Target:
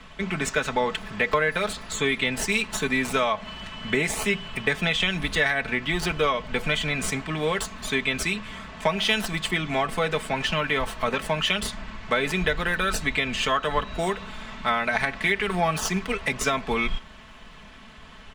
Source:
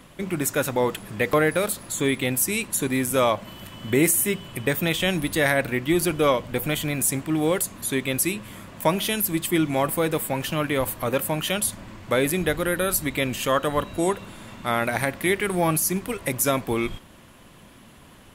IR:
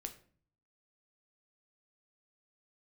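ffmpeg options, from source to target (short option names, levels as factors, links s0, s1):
-filter_complex "[0:a]aemphasis=mode=reproduction:type=50kf,acrossover=split=170|1600|7800[s0][s1][s2][s3];[s3]acrusher=samples=37:mix=1:aa=0.000001:lfo=1:lforange=37:lforate=0.62[s4];[s0][s1][s2][s4]amix=inputs=4:normalize=0,equalizer=f=280:w=0.41:g=-12.5,acompressor=threshold=0.0398:ratio=6,aecho=1:1:4.6:0.66,volume=2.51"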